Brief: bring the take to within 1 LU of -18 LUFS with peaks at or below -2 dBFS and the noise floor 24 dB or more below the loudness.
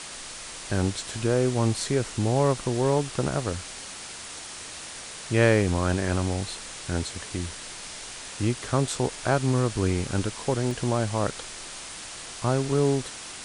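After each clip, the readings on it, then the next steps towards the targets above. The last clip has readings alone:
dropouts 1; longest dropout 1.2 ms; noise floor -40 dBFS; noise floor target -52 dBFS; loudness -27.5 LUFS; peak -5.5 dBFS; loudness target -18.0 LUFS
-> interpolate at 10.71, 1.2 ms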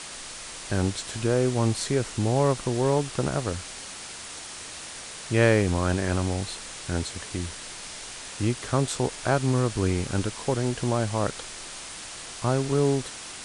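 dropouts 0; noise floor -40 dBFS; noise floor target -52 dBFS
-> denoiser 12 dB, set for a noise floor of -40 dBFS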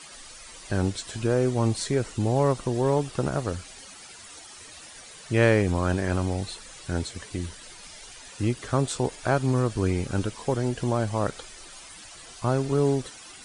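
noise floor -46 dBFS; noise floor target -51 dBFS
-> denoiser 6 dB, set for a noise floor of -46 dBFS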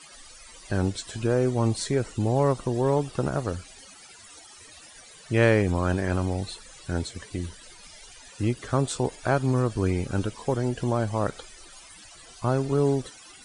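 noise floor -49 dBFS; noise floor target -51 dBFS
-> denoiser 6 dB, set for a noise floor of -49 dBFS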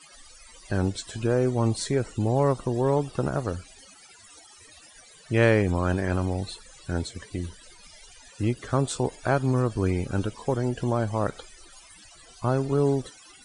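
noise floor -52 dBFS; loudness -26.5 LUFS; peak -6.0 dBFS; loudness target -18.0 LUFS
-> gain +8.5 dB; limiter -2 dBFS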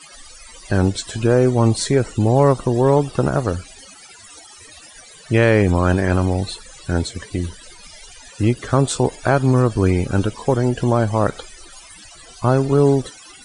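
loudness -18.5 LUFS; peak -2.0 dBFS; noise floor -43 dBFS

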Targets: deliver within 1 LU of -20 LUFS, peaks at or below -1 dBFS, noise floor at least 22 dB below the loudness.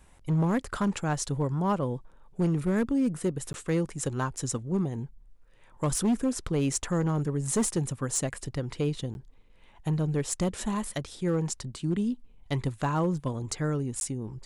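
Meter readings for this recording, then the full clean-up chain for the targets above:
clipped 1.3%; flat tops at -20.5 dBFS; dropouts 3; longest dropout 11 ms; loudness -29.5 LUFS; peak -20.5 dBFS; loudness target -20.0 LUFS
-> clip repair -20.5 dBFS; interpolate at 3.53/9.14/14, 11 ms; gain +9.5 dB

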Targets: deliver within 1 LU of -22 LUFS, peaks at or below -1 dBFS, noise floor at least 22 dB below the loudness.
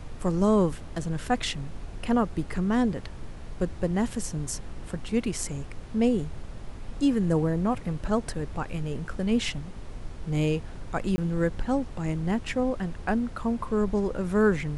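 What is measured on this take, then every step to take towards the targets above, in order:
dropouts 1; longest dropout 20 ms; noise floor -40 dBFS; noise floor target -50 dBFS; loudness -28.0 LUFS; peak -11.5 dBFS; loudness target -22.0 LUFS
-> interpolate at 11.16, 20 ms; noise print and reduce 10 dB; gain +6 dB

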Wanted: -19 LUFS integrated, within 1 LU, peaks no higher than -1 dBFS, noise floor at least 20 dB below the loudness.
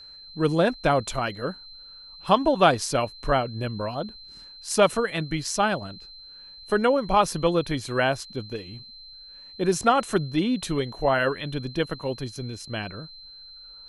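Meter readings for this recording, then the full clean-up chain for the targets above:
steady tone 4100 Hz; tone level -43 dBFS; loudness -25.0 LUFS; peak -5.0 dBFS; loudness target -19.0 LUFS
-> notch 4100 Hz, Q 30; gain +6 dB; limiter -1 dBFS

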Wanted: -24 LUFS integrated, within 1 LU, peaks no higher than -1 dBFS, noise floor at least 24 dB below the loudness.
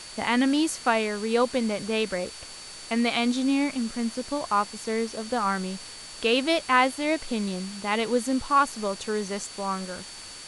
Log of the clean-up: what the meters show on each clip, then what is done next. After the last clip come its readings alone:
steady tone 4500 Hz; tone level -44 dBFS; noise floor -42 dBFS; noise floor target -50 dBFS; loudness -26.0 LUFS; peak -7.0 dBFS; loudness target -24.0 LUFS
-> notch 4500 Hz, Q 30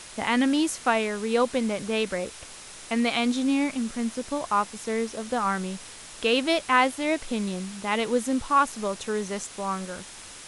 steady tone none; noise floor -44 dBFS; noise floor target -50 dBFS
-> denoiser 6 dB, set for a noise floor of -44 dBFS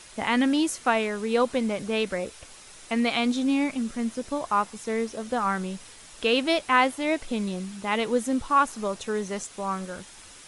noise floor -48 dBFS; noise floor target -50 dBFS
-> denoiser 6 dB, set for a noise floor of -48 dBFS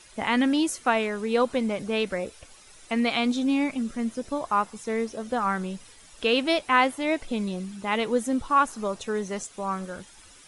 noise floor -51 dBFS; loudness -26.5 LUFS; peak -7.0 dBFS; loudness target -24.0 LUFS
-> gain +2.5 dB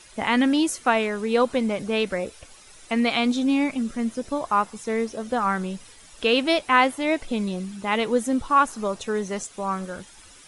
loudness -24.0 LUFS; peak -4.5 dBFS; noise floor -49 dBFS

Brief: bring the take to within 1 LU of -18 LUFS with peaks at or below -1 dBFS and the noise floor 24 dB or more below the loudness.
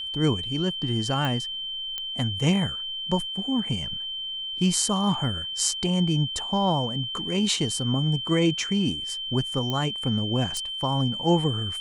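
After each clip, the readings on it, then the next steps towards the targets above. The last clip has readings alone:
clicks 4; steady tone 3100 Hz; tone level -30 dBFS; loudness -25.0 LUFS; peak -7.0 dBFS; loudness target -18.0 LUFS
-> de-click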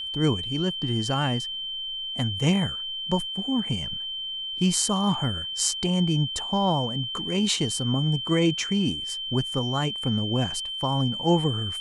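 clicks 0; steady tone 3100 Hz; tone level -30 dBFS
-> notch 3100 Hz, Q 30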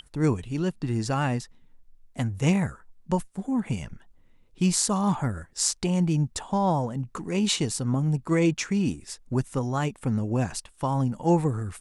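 steady tone none; loudness -26.5 LUFS; peak -6.5 dBFS; loudness target -18.0 LUFS
-> gain +8.5 dB; limiter -1 dBFS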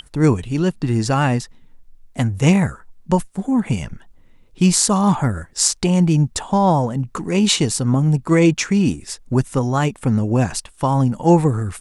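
loudness -18.0 LUFS; peak -1.0 dBFS; noise floor -49 dBFS

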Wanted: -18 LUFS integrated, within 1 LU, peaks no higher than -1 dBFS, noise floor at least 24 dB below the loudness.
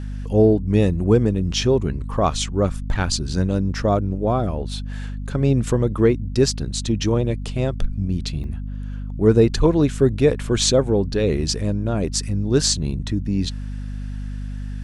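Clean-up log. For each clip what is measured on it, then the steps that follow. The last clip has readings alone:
dropouts 1; longest dropout 1.1 ms; hum 50 Hz; harmonics up to 250 Hz; hum level -26 dBFS; loudness -20.5 LUFS; peak -3.0 dBFS; loudness target -18.0 LUFS
-> interpolate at 8.44, 1.1 ms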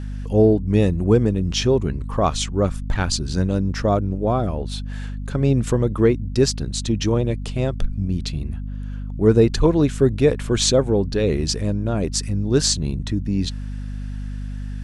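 dropouts 0; hum 50 Hz; harmonics up to 250 Hz; hum level -26 dBFS
-> de-hum 50 Hz, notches 5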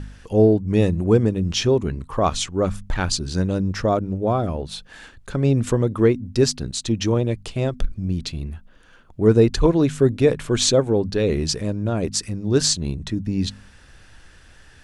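hum none; loudness -21.0 LUFS; peak -3.0 dBFS; loudness target -18.0 LUFS
-> gain +3 dB; limiter -1 dBFS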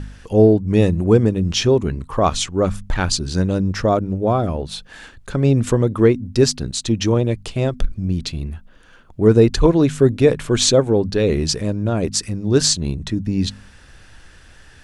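loudness -18.0 LUFS; peak -1.0 dBFS; noise floor -46 dBFS

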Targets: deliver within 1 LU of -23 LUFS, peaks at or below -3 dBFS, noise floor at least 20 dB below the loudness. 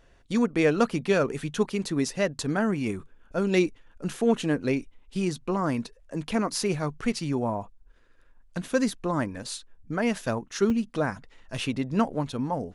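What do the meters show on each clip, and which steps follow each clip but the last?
dropouts 1; longest dropout 1.9 ms; loudness -28.0 LUFS; peak -10.0 dBFS; loudness target -23.0 LUFS
-> interpolate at 10.7, 1.9 ms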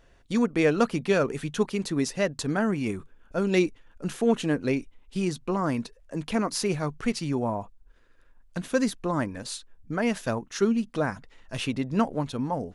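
dropouts 0; loudness -28.0 LUFS; peak -10.0 dBFS; loudness target -23.0 LUFS
-> gain +5 dB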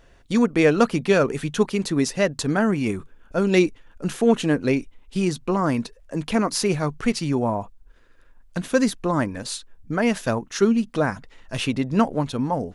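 loudness -23.0 LUFS; peak -5.0 dBFS; noise floor -53 dBFS

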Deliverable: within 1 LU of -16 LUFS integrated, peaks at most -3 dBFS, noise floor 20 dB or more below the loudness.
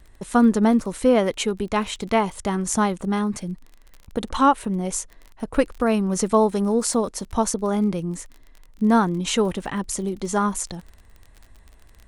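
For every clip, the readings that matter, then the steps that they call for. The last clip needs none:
ticks 32/s; loudness -22.5 LUFS; peak -5.0 dBFS; loudness target -16.0 LUFS
-> de-click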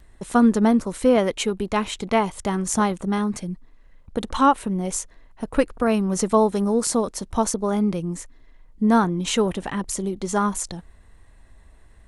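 ticks 0.083/s; loudness -22.5 LUFS; peak -5.0 dBFS; loudness target -16.0 LUFS
-> gain +6.5 dB; limiter -3 dBFS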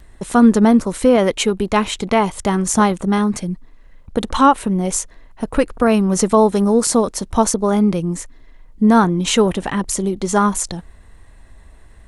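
loudness -16.5 LUFS; peak -3.0 dBFS; noise floor -44 dBFS

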